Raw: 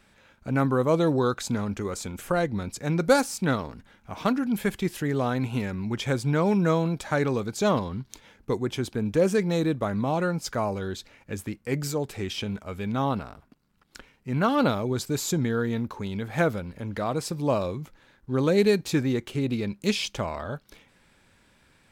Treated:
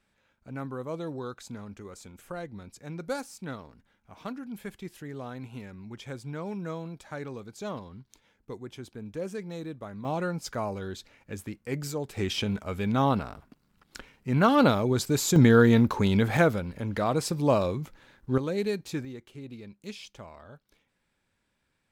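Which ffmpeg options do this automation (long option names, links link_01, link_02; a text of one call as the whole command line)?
ffmpeg -i in.wav -af "asetnsamples=nb_out_samples=441:pad=0,asendcmd='10.05 volume volume -4.5dB;12.17 volume volume 2dB;15.36 volume volume 8.5dB;16.37 volume volume 1.5dB;18.38 volume volume -8.5dB;19.05 volume volume -15.5dB',volume=-13dB" out.wav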